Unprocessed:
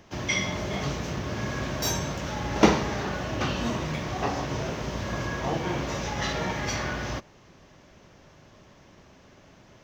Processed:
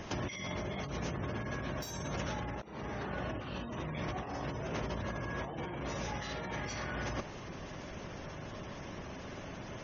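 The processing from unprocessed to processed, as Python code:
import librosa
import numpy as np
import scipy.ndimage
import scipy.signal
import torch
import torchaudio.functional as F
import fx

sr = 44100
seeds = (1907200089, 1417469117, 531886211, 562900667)

y = fx.over_compress(x, sr, threshold_db=-39.0, ratio=-1.0)
y = fx.spec_gate(y, sr, threshold_db=-25, keep='strong')
y = fx.high_shelf(y, sr, hz=6500.0, db=-9.5, at=(2.5, 3.6))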